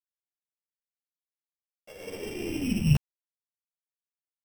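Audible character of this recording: a buzz of ramps at a fixed pitch in blocks of 16 samples; random-step tremolo; a quantiser's noise floor 10-bit, dither none; a shimmering, thickened sound

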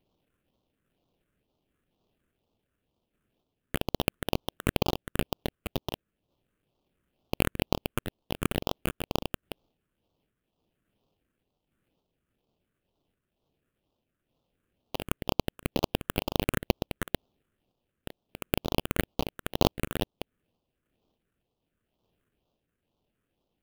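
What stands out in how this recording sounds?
random-step tremolo 3.5 Hz; aliases and images of a low sample rate 2100 Hz, jitter 20%; phasing stages 4, 2.1 Hz, lowest notch 800–1700 Hz

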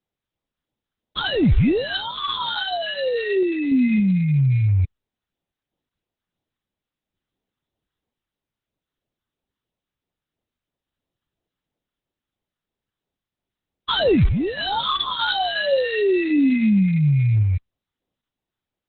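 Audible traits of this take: random-step tremolo; aliases and images of a low sample rate 2300 Hz, jitter 0%; phasing stages 2, 3 Hz, lowest notch 590–1600 Hz; Opus

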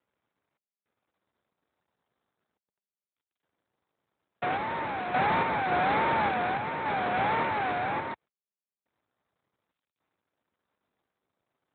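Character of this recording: a buzz of ramps at a fixed pitch in blocks of 8 samples; random-step tremolo, depth 85%; aliases and images of a low sample rate 3100 Hz, jitter 20%; AMR-NB

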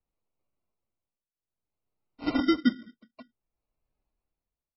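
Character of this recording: phasing stages 2, 3.8 Hz, lowest notch 520–2000 Hz; tremolo triangle 0.57 Hz, depth 95%; aliases and images of a low sample rate 1700 Hz, jitter 0%; MP3

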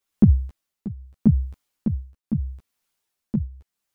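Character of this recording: tremolo triangle 0.79 Hz, depth 85%; a shimmering, thickened sound

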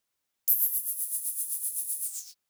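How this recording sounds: noise floor -82 dBFS; spectral tilt +11.0 dB/oct

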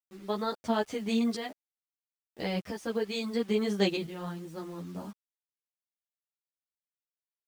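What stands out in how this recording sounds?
tremolo saw up 0.74 Hz, depth 70%; a quantiser's noise floor 10-bit, dither none; a shimmering, thickened sound

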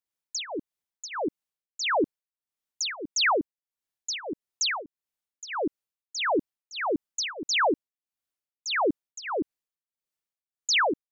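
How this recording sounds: tremolo triangle 1.6 Hz, depth 95%

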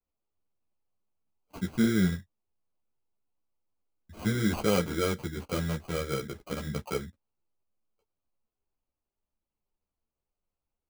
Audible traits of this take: aliases and images of a low sample rate 1800 Hz, jitter 0%; a shimmering, thickened sound

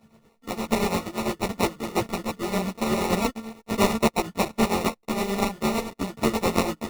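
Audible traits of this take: a buzz of ramps at a fixed pitch in blocks of 32 samples; tremolo triangle 8.7 Hz, depth 75%; aliases and images of a low sample rate 1600 Hz, jitter 0%; a shimmering, thickened sound

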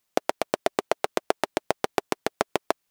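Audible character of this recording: noise floor -77 dBFS; spectral tilt -3.0 dB/oct

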